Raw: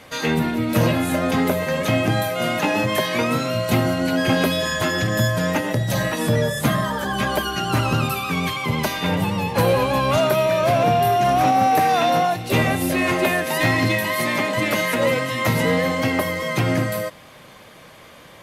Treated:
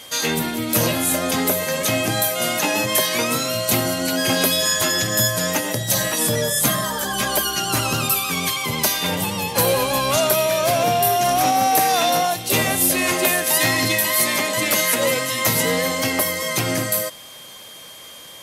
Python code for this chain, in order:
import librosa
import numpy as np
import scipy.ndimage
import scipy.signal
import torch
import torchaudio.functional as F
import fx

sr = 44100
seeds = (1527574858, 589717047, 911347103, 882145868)

y = fx.bass_treble(x, sr, bass_db=-5, treble_db=15)
y = y + 10.0 ** (-40.0 / 20.0) * np.sin(2.0 * np.pi * 3200.0 * np.arange(len(y)) / sr)
y = y * 10.0 ** (-1.0 / 20.0)